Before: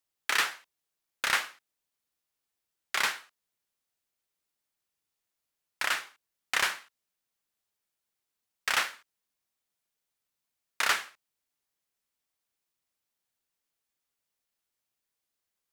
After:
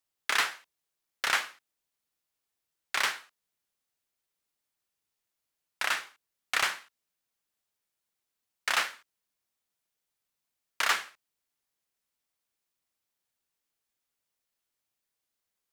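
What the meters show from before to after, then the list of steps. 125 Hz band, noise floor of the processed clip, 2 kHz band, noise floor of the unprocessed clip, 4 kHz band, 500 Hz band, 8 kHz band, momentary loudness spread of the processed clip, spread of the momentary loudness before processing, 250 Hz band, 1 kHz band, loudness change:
can't be measured, below −85 dBFS, −0.5 dB, below −85 dBFS, 0.0 dB, 0.0 dB, −1.0 dB, 15 LU, 15 LU, −1.5 dB, +0.5 dB, 0.0 dB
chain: highs frequency-modulated by the lows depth 0.49 ms

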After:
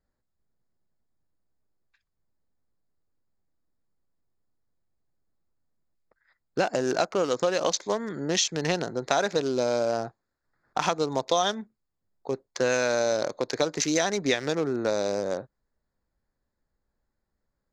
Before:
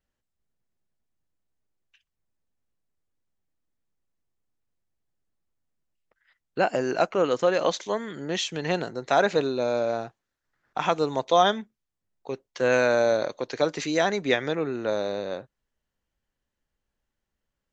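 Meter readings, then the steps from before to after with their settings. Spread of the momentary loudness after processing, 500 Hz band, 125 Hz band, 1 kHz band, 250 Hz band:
9 LU, −2.0 dB, 0.0 dB, −3.0 dB, 0.0 dB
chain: adaptive Wiener filter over 15 samples
parametric band 5,900 Hz +14.5 dB 1.1 octaves
downward compressor 4 to 1, threshold −25 dBFS, peak gain reduction 10.5 dB
level +3.5 dB

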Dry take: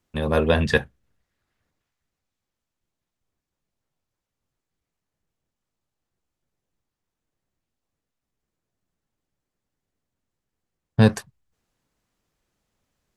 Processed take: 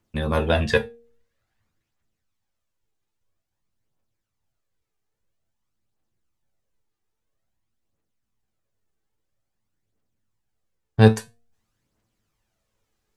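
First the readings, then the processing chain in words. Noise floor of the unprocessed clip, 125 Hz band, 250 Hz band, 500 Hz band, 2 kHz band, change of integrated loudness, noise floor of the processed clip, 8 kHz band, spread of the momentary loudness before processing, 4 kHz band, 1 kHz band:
−85 dBFS, +1.5 dB, 0.0 dB, +1.0 dB, −1.0 dB, +0.5 dB, −80 dBFS, 0.0 dB, 9 LU, +0.5 dB, +2.0 dB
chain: tuned comb filter 110 Hz, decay 0.22 s, harmonics all, mix 70%
phase shifter 0.5 Hz, delay 2.6 ms, feedback 43%
hum removal 234.2 Hz, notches 3
level +5 dB

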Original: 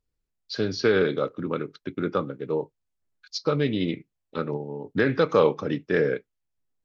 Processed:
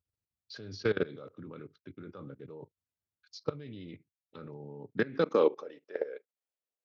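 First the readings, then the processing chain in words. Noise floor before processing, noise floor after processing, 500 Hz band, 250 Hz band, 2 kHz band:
−81 dBFS, below −85 dBFS, −8.5 dB, −11.5 dB, −11.0 dB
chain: output level in coarse steps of 20 dB
high-pass filter sweep 88 Hz → 520 Hz, 0:04.75–0:05.70
level −6 dB

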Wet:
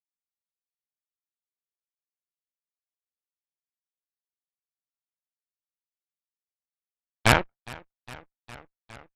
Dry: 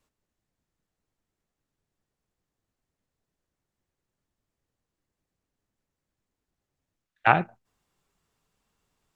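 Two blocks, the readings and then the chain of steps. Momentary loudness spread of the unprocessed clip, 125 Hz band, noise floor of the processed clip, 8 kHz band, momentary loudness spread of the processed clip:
11 LU, +5.5 dB, below −85 dBFS, can't be measured, 12 LU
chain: harmonic generator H 7 −17 dB, 8 −8 dB, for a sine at −1.5 dBFS
feedback echo with a swinging delay time 411 ms, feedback 79%, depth 100 cents, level −22 dB
level −3 dB

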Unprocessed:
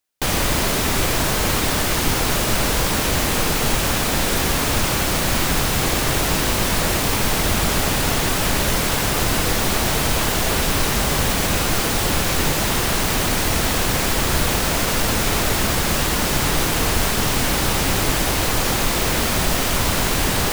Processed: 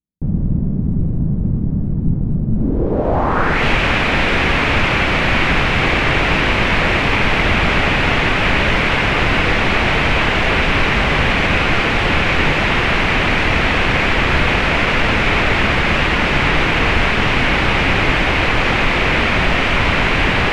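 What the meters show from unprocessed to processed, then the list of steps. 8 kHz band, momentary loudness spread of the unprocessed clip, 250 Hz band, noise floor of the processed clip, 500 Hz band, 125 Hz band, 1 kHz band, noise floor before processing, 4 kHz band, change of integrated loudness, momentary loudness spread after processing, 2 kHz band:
−16.0 dB, 0 LU, +4.5 dB, −18 dBFS, +4.0 dB, +5.0 dB, +5.0 dB, −21 dBFS, +1.5 dB, +4.0 dB, 5 LU, +9.0 dB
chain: low-pass filter sweep 180 Hz → 2,400 Hz, 0:02.50–0:03.64
level +4 dB

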